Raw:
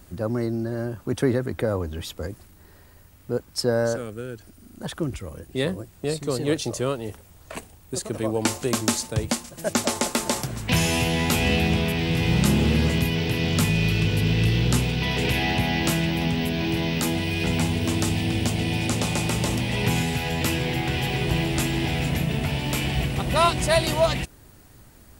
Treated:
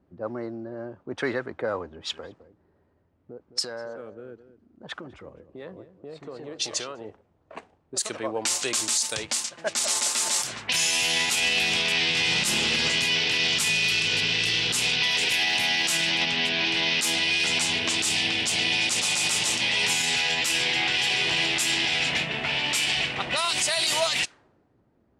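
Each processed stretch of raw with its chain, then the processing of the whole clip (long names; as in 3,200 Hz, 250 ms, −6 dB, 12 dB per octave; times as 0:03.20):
0:01.91–0:07.05: downward compressor 16 to 1, threshold −27 dBFS + single-tap delay 211 ms −11.5 dB
whole clip: meter weighting curve ITU-R 468; low-pass that shuts in the quiet parts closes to 320 Hz, open at −17.5 dBFS; brickwall limiter −17 dBFS; level +2.5 dB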